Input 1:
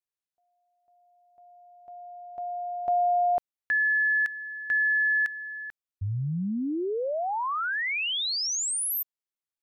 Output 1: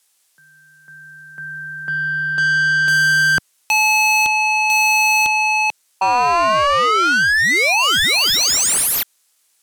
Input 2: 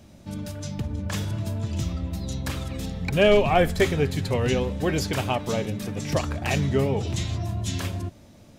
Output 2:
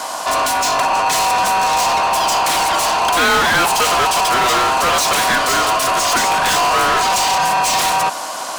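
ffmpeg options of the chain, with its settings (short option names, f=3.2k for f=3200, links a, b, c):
-filter_complex "[0:a]equalizer=f=9.5k:w=0.51:g=14.5,aeval=exprs='val(0)*sin(2*PI*860*n/s)':c=same,acrossover=split=130|4000[a][b][c];[c]acrusher=bits=5:mode=log:mix=0:aa=0.000001[d];[a][b][d]amix=inputs=3:normalize=0,asplit=2[e][f];[f]highpass=f=720:p=1,volume=36dB,asoftclip=type=tanh:threshold=-8dB[g];[e][g]amix=inputs=2:normalize=0,lowpass=f=6k:p=1,volume=-6dB"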